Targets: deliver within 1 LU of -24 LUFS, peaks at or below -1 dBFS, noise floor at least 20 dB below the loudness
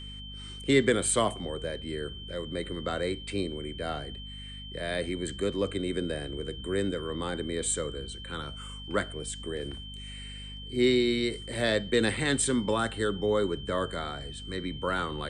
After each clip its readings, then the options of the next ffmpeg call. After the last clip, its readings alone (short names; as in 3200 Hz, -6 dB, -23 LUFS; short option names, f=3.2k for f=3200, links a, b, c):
hum 50 Hz; harmonics up to 250 Hz; hum level -41 dBFS; steady tone 3100 Hz; tone level -43 dBFS; loudness -30.5 LUFS; peak -10.5 dBFS; loudness target -24.0 LUFS
-> -af "bandreject=f=50:t=h:w=4,bandreject=f=100:t=h:w=4,bandreject=f=150:t=h:w=4,bandreject=f=200:t=h:w=4,bandreject=f=250:t=h:w=4"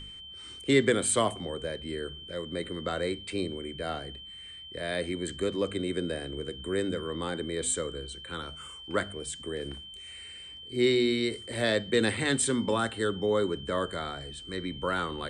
hum none; steady tone 3100 Hz; tone level -43 dBFS
-> -af "bandreject=f=3.1k:w=30"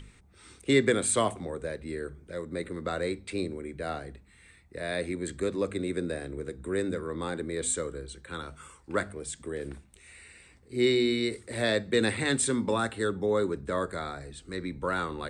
steady tone none; loudness -30.5 LUFS; peak -11.5 dBFS; loudness target -24.0 LUFS
-> -af "volume=6.5dB"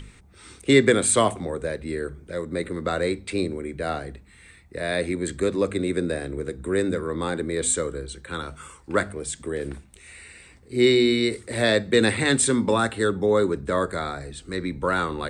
loudness -24.0 LUFS; peak -5.0 dBFS; noise floor -52 dBFS